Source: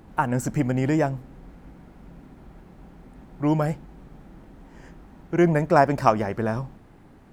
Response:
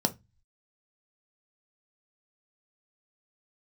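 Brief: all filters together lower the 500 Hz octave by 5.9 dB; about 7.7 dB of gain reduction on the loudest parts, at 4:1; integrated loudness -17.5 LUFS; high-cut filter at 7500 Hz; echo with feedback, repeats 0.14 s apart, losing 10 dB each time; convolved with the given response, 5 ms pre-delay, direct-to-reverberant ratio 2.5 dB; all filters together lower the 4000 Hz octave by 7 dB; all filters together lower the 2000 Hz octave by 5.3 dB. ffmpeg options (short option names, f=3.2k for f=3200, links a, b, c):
-filter_complex "[0:a]lowpass=7.5k,equalizer=f=500:t=o:g=-8,equalizer=f=2k:t=o:g=-5,equalizer=f=4k:t=o:g=-8.5,acompressor=threshold=-25dB:ratio=4,aecho=1:1:140|280|420|560:0.316|0.101|0.0324|0.0104,asplit=2[a][b];[1:a]atrim=start_sample=2205,adelay=5[c];[b][c]afir=irnorm=-1:irlink=0,volume=-10.5dB[d];[a][d]amix=inputs=2:normalize=0,volume=8dB"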